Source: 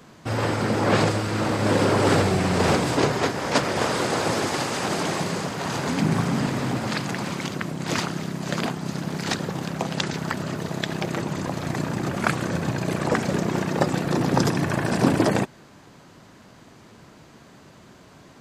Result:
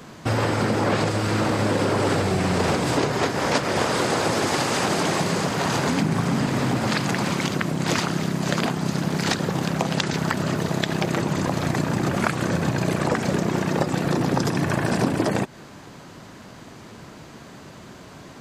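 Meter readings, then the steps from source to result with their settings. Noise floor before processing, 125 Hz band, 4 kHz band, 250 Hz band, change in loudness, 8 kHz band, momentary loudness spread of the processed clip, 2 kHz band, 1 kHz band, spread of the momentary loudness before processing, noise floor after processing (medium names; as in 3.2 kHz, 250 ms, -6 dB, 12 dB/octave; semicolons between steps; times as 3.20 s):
-50 dBFS, +1.5 dB, +1.5 dB, +1.5 dB, +1.0 dB, +2.0 dB, 21 LU, +1.5 dB, +1.0 dB, 8 LU, -43 dBFS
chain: compression, threshold -25 dBFS, peak gain reduction 11.5 dB; trim +6.5 dB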